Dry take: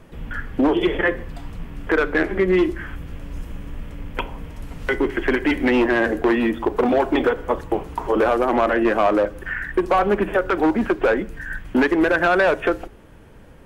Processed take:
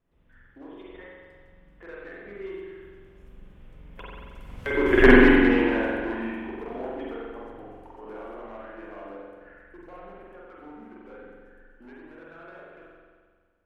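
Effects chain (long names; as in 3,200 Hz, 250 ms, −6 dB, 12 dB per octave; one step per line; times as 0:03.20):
source passing by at 0:05.03, 16 m/s, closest 1.4 metres
spring reverb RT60 1.7 s, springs 44 ms, chirp 65 ms, DRR −5.5 dB
level +3 dB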